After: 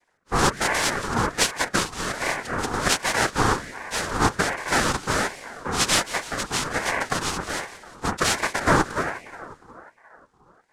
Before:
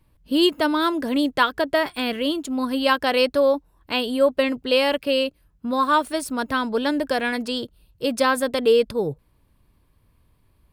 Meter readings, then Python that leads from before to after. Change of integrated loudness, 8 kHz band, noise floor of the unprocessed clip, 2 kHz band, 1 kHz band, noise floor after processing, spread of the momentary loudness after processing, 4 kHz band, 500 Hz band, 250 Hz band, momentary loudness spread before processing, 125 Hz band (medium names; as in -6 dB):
-2.0 dB, +13.0 dB, -63 dBFS, +2.5 dB, 0.0 dB, -61 dBFS, 9 LU, -1.0 dB, -8.5 dB, -7.0 dB, 8 LU, no reading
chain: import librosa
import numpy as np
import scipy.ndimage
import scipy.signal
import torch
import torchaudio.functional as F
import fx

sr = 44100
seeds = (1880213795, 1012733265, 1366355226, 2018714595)

y = fx.noise_vocoder(x, sr, seeds[0], bands=2)
y = fx.echo_split(y, sr, split_hz=650.0, low_ms=357, high_ms=179, feedback_pct=52, wet_db=-15)
y = fx.ring_lfo(y, sr, carrier_hz=960.0, swing_pct=40, hz=1.3)